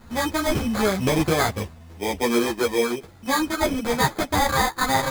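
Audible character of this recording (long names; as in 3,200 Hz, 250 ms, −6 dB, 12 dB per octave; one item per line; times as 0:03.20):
aliases and images of a low sample rate 2,800 Hz, jitter 0%
a shimmering, thickened sound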